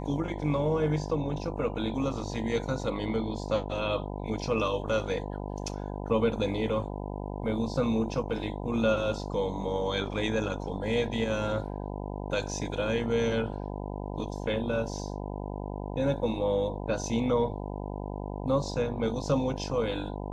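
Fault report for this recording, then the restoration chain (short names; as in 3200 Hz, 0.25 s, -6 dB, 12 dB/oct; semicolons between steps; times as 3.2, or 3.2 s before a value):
buzz 50 Hz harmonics 20 -36 dBFS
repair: de-hum 50 Hz, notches 20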